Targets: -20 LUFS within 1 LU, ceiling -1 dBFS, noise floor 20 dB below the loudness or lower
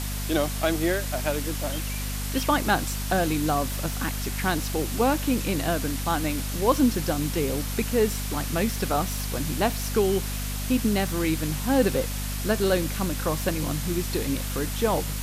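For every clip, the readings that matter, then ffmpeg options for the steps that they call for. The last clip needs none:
hum 50 Hz; highest harmonic 250 Hz; hum level -28 dBFS; noise floor -30 dBFS; noise floor target -46 dBFS; loudness -26.0 LUFS; peak level -8.0 dBFS; loudness target -20.0 LUFS
-> -af "bandreject=f=50:t=h:w=6,bandreject=f=100:t=h:w=6,bandreject=f=150:t=h:w=6,bandreject=f=200:t=h:w=6,bandreject=f=250:t=h:w=6"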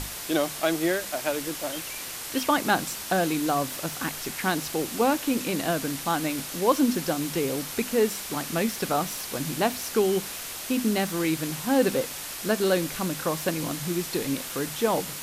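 hum not found; noise floor -36 dBFS; noise floor target -47 dBFS
-> -af "afftdn=nr=11:nf=-36"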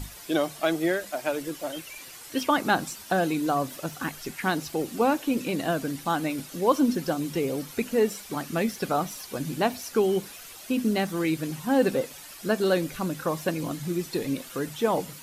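noise floor -45 dBFS; noise floor target -48 dBFS
-> -af "afftdn=nr=6:nf=-45"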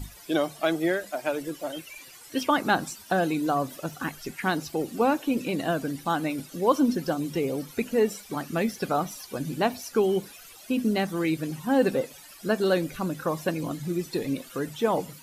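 noise floor -48 dBFS; loudness -27.5 LUFS; peak level -9.0 dBFS; loudness target -20.0 LUFS
-> -af "volume=2.37"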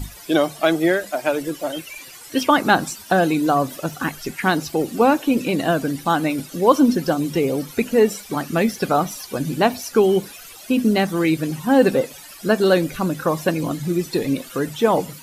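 loudness -20.0 LUFS; peak level -1.5 dBFS; noise floor -41 dBFS

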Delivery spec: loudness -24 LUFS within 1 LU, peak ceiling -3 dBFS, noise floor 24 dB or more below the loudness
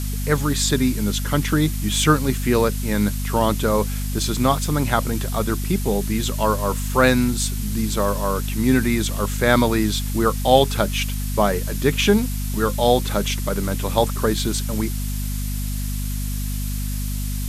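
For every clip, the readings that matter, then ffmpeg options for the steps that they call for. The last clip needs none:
hum 50 Hz; highest harmonic 250 Hz; hum level -23 dBFS; noise floor -25 dBFS; noise floor target -45 dBFS; loudness -21.0 LUFS; peak level -1.0 dBFS; loudness target -24.0 LUFS
-> -af "bandreject=f=50:t=h:w=4,bandreject=f=100:t=h:w=4,bandreject=f=150:t=h:w=4,bandreject=f=200:t=h:w=4,bandreject=f=250:t=h:w=4"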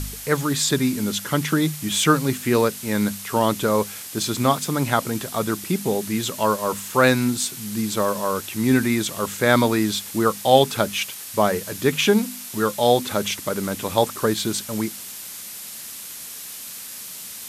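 hum not found; noise floor -36 dBFS; noise floor target -46 dBFS
-> -af "afftdn=nr=10:nf=-36"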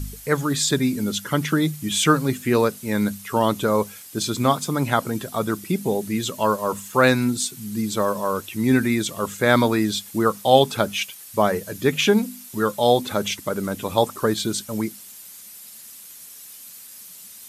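noise floor -42 dBFS; noise floor target -46 dBFS
-> -af "afftdn=nr=6:nf=-42"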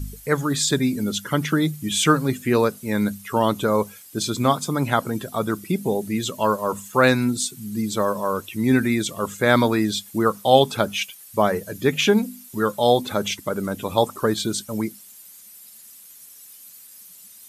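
noise floor -46 dBFS; loudness -22.0 LUFS; peak level -1.5 dBFS; loudness target -24.0 LUFS
-> -af "volume=0.794"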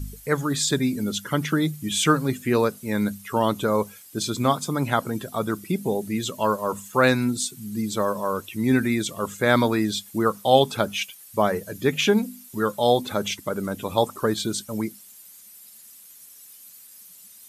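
loudness -24.0 LUFS; peak level -3.5 dBFS; noise floor -48 dBFS

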